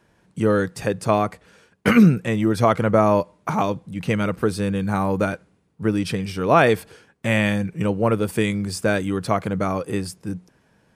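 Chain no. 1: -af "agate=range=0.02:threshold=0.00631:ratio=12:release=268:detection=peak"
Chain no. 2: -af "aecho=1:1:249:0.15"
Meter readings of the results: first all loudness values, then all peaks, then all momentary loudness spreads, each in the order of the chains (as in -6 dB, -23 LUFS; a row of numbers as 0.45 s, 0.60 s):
-21.5 LUFS, -21.0 LUFS; -3.5 dBFS, -3.5 dBFS; 11 LU, 11 LU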